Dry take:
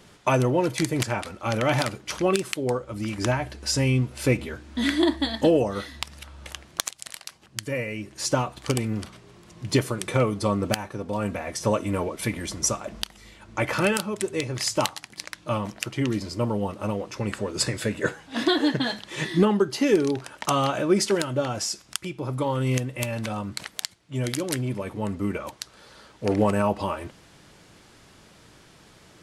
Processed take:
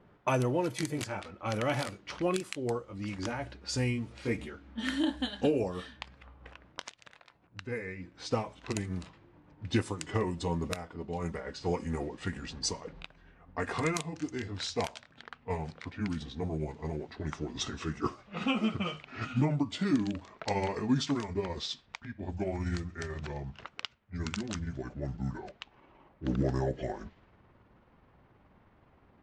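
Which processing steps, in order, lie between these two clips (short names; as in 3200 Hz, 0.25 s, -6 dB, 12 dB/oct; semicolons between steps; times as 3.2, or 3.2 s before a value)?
gliding pitch shift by -8.5 st starting unshifted; low-pass opened by the level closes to 1300 Hz, open at -22.5 dBFS; gain -7 dB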